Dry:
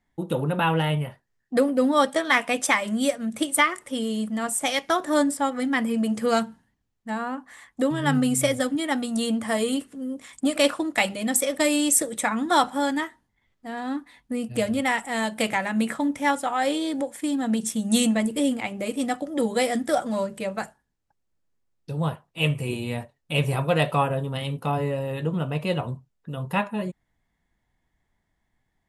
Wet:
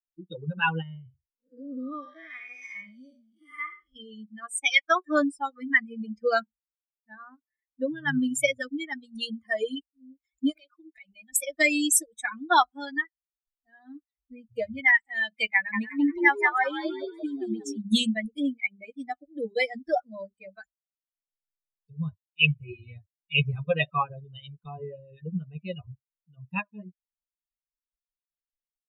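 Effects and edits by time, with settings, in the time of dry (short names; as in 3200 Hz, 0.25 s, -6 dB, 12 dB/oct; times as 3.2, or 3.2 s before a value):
0.82–3.96 time blur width 0.255 s
10.56–11.33 compressor 16:1, threshold -29 dBFS
15.55–17.78 frequency-shifting echo 0.179 s, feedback 54%, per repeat +62 Hz, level -3 dB
whole clip: per-bin expansion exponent 3; bell 2100 Hz +12 dB 1.1 oct; gain +1.5 dB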